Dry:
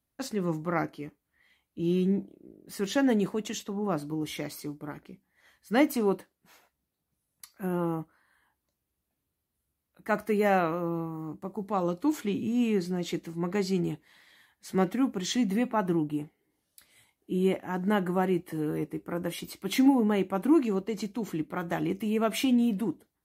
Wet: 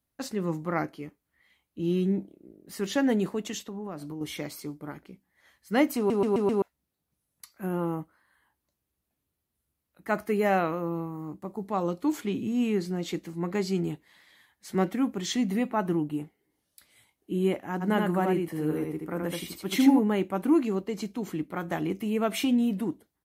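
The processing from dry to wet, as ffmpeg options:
ffmpeg -i in.wav -filter_complex "[0:a]asettb=1/sr,asplit=3[link_01][link_02][link_03];[link_01]atrim=end=3.604[link_04];[link_02]atrim=start=3.6:end=4.21,asetpts=PTS-STARTPTS,afade=type=in:duration=0.004:curve=qsin,afade=type=out:start_time=0.606:duration=0.004:curve=qsin,acompressor=threshold=-34dB:ratio=4:attack=3.2:release=140:knee=1:detection=peak[link_05];[link_03]atrim=start=4.206[link_06];[link_04][link_05]acrossfade=duration=0.004:curve1=hsin:curve2=qsin[link_07];[link_07][link_06]acrossfade=duration=0.004:curve1=qsin:curve2=hsin,asplit=3[link_08][link_09][link_10];[link_08]afade=type=out:start_time=17.8:duration=0.02[link_11];[link_09]aecho=1:1:79:0.668,afade=type=in:start_time=17.8:duration=0.02,afade=type=out:start_time=19.98:duration=0.02[link_12];[link_10]afade=type=in:start_time=19.98:duration=0.02[link_13];[link_11][link_12][link_13]amix=inputs=3:normalize=0,asplit=6[link_14][link_15][link_16][link_17][link_18][link_19];[link_14]atrim=end=6.102[link_20];[link_15]atrim=start=5.968:end=6.102[link_21];[link_16]atrim=start=5.968:end=6.102[link_22];[link_17]atrim=start=5.968:end=6.102[link_23];[link_18]atrim=start=5.968:end=6.102[link_24];[link_19]atrim=start=6.618[link_25];[link_20][link_21]acrossfade=duration=0.004:curve1=hsin:curve2=hsin[link_26];[link_26][link_22]acrossfade=duration=0.004:curve1=hsin:curve2=hsin[link_27];[link_27][link_23]acrossfade=duration=0.004:curve1=hsin:curve2=hsin[link_28];[link_28][link_24]acrossfade=duration=0.004:curve1=hsin:curve2=hsin[link_29];[link_29][link_25]acrossfade=duration=0.004:curve1=hsin:curve2=hsin" out.wav

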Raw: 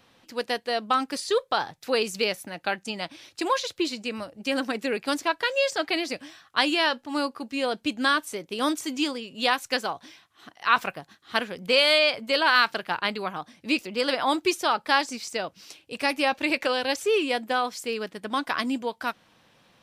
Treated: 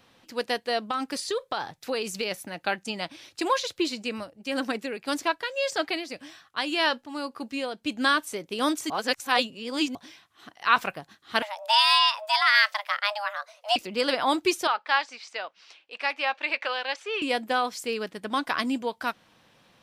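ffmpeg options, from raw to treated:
ffmpeg -i in.wav -filter_complex "[0:a]asplit=3[link_01][link_02][link_03];[link_01]afade=type=out:start_time=0.86:duration=0.02[link_04];[link_02]acompressor=threshold=-25dB:ratio=4:attack=3.2:release=140:knee=1:detection=peak,afade=type=in:start_time=0.86:duration=0.02,afade=type=out:start_time=2.3:duration=0.02[link_05];[link_03]afade=type=in:start_time=2.3:duration=0.02[link_06];[link_04][link_05][link_06]amix=inputs=3:normalize=0,asettb=1/sr,asplit=3[link_07][link_08][link_09];[link_07]atrim=end=4.124[link_10];[link_08]atrim=start=4.12:end=8.03,asetpts=PTS-STARTPTS,afade=type=in:duration=0.004:curve=qsin,afade=type=out:start_time=3.906:duration=0.004:curve=qsin,tremolo=f=1.8:d=0.55[link_11];[link_09]atrim=start=8.026[link_12];[link_10][link_11]acrossfade=duration=0.004:curve1=hsin:curve2=qsin[link_13];[link_13][link_12]acrossfade=duration=0.004:curve1=qsin:curve2=hsin,asettb=1/sr,asplit=3[link_14][link_15][link_16];[link_14]atrim=end=11.424[link_17];[link_15]atrim=start=11.42:end=13.76,asetpts=PTS-STARTPTS,afade=type=in:duration=0.004:curve=qsin,afade=type=out:start_time=2.336:duration=0.004:curve=qsin,afreqshift=410[link_18];[link_16]atrim=start=13.756[link_19];[link_17][link_18]acrossfade=duration=0.004:curve1=hsin:curve2=qsin[link_20];[link_20][link_19]acrossfade=duration=0.004:curve1=qsin:curve2=hsin,asettb=1/sr,asplit=3[link_21][link_22][link_23];[link_21]atrim=end=14.674[link_24];[link_22]atrim=start=14.67:end=17.22,asetpts=PTS-STARTPTS,afade=type=in:duration=0.004:curve=qsin,afade=type=out:start_time=2.546:duration=0.004:curve=qsin,highpass=790,lowpass=3400[link_25];[link_23]atrim=start=17.216[link_26];[link_24][link_25]acrossfade=duration=0.004:curve1=hsin:curve2=qsin[link_27];[link_27][link_26]acrossfade=duration=0.004:curve1=qsin:curve2=hsin,asplit=3[link_28][link_29][link_30];[link_28]atrim=end=8.902[link_31];[link_29]atrim=start=8.898:end=9.952,asetpts=PTS-STARTPTS,areverse[link_32];[link_30]atrim=start=9.948[link_33];[link_31][link_32]acrossfade=duration=0.004:curve1=hsin:curve2=hsin[link_34];[link_34][link_33]acrossfade=duration=0.004:curve1=hsin:curve2=hsin" out.wav

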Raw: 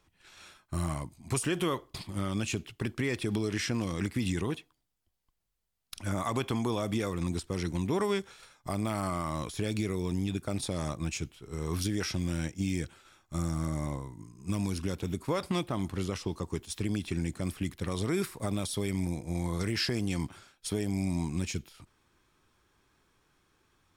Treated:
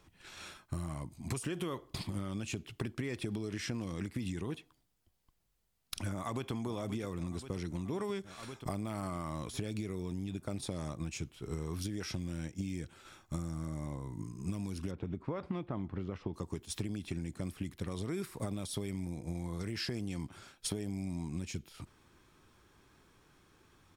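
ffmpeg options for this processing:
ffmpeg -i in.wav -filter_complex "[0:a]asplit=2[link_01][link_02];[link_02]afade=type=in:start_time=6.12:duration=0.01,afade=type=out:start_time=6.52:duration=0.01,aecho=0:1:530|1060|1590|2120|2650|3180|3710|4240|4770:0.237137|0.165996|0.116197|0.0813381|0.0569367|0.0398557|0.027899|0.0195293|0.0136705[link_03];[link_01][link_03]amix=inputs=2:normalize=0,asettb=1/sr,asplit=3[link_04][link_05][link_06];[link_04]atrim=end=14.914[link_07];[link_05]atrim=start=14.91:end=16.34,asetpts=PTS-STARTPTS,afade=type=in:duration=0.004:curve=qsin,afade=type=out:start_time=1.426:duration=0.004:curve=qsin,lowpass=2100[link_08];[link_06]atrim=start=16.336[link_09];[link_07][link_08]acrossfade=duration=0.004:curve1=hsin:curve2=qsin[link_10];[link_10][link_09]acrossfade=duration=0.004:curve1=qsin:curve2=hsin,lowshelf=frequency=450:gain=5,acompressor=threshold=-37dB:ratio=10,lowshelf=frequency=63:gain=-5.5,volume=3.5dB" out.wav

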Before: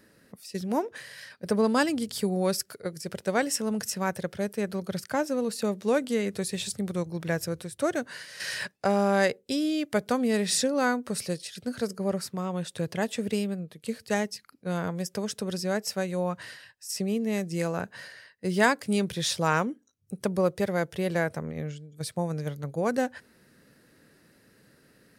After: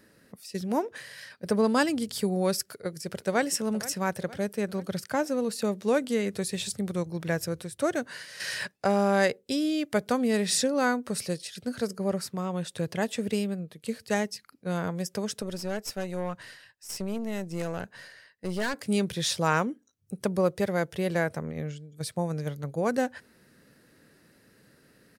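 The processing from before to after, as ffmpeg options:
ffmpeg -i in.wav -filter_complex "[0:a]asplit=2[link_01][link_02];[link_02]afade=type=in:start_time=2.68:duration=0.01,afade=type=out:start_time=3.45:duration=0.01,aecho=0:1:470|940|1410|1880:0.158489|0.0792447|0.0396223|0.0198112[link_03];[link_01][link_03]amix=inputs=2:normalize=0,asettb=1/sr,asplit=3[link_04][link_05][link_06];[link_04]atrim=end=15.424[link_07];[link_05]atrim=start=15.42:end=18.74,asetpts=PTS-STARTPTS,afade=type=in:duration=0.004:curve=qsin,afade=type=out:start_time=3.316:duration=0.004:curve=qsin,aeval=exprs='(tanh(20*val(0)+0.65)-tanh(0.65))/20':channel_layout=same[link_08];[link_06]atrim=start=18.736[link_09];[link_07][link_08]acrossfade=duration=0.004:curve1=hsin:curve2=qsin[link_10];[link_10][link_09]acrossfade=duration=0.004:curve1=qsin:curve2=hsin" out.wav

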